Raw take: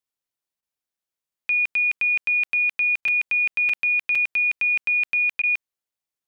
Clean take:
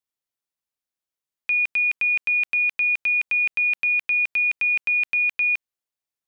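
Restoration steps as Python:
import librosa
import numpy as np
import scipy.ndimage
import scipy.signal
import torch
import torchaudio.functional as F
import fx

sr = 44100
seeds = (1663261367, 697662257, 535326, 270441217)

y = fx.fix_interpolate(x, sr, at_s=(0.97, 2.48, 3.08, 3.69, 4.15), length_ms=4.1)
y = fx.fix_interpolate(y, sr, at_s=(0.61, 3.01, 5.42), length_ms=13.0)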